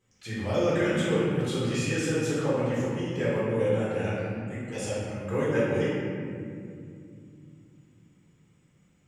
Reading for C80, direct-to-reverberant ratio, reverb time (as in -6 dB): 0.0 dB, -9.5 dB, 2.4 s